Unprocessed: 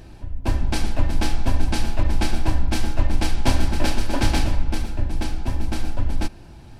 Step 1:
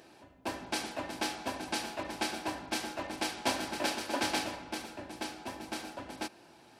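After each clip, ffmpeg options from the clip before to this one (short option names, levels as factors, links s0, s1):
-af "highpass=370,volume=0.562"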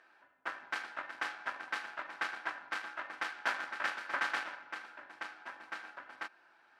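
-af "aeval=exprs='0.168*(cos(1*acos(clip(val(0)/0.168,-1,1)))-cos(1*PI/2))+0.0299*(cos(3*acos(clip(val(0)/0.168,-1,1)))-cos(3*PI/2))+0.0266*(cos(6*acos(clip(val(0)/0.168,-1,1)))-cos(6*PI/2))':c=same,bandpass=f=1500:t=q:w=3:csg=0,volume=2.99"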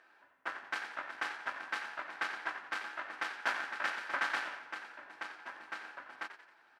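-filter_complex "[0:a]asplit=6[s0][s1][s2][s3][s4][s5];[s1]adelay=89,afreqshift=77,volume=0.282[s6];[s2]adelay=178,afreqshift=154,volume=0.124[s7];[s3]adelay=267,afreqshift=231,volume=0.0543[s8];[s4]adelay=356,afreqshift=308,volume=0.024[s9];[s5]adelay=445,afreqshift=385,volume=0.0106[s10];[s0][s6][s7][s8][s9][s10]amix=inputs=6:normalize=0"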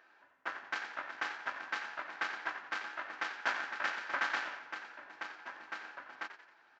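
-af "aresample=16000,aresample=44100"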